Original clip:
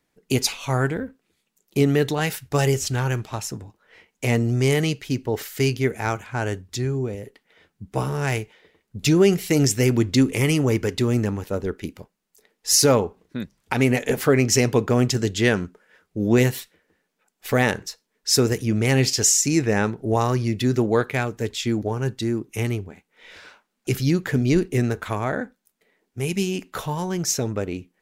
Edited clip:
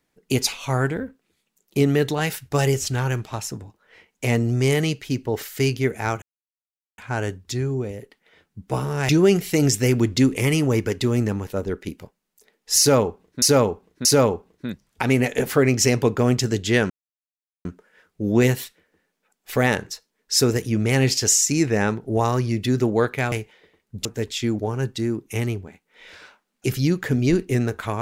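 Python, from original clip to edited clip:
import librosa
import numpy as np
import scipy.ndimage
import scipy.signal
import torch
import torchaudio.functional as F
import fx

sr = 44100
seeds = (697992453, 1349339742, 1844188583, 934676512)

y = fx.edit(x, sr, fx.insert_silence(at_s=6.22, length_s=0.76),
    fx.move(start_s=8.33, length_s=0.73, to_s=21.28),
    fx.repeat(start_s=12.76, length_s=0.63, count=3),
    fx.insert_silence(at_s=15.61, length_s=0.75), tone=tone)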